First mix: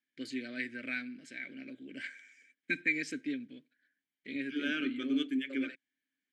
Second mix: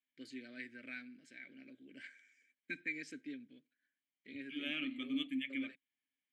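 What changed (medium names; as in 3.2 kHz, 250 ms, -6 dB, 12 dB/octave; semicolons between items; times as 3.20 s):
first voice -10.0 dB; second voice: add static phaser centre 1.5 kHz, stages 6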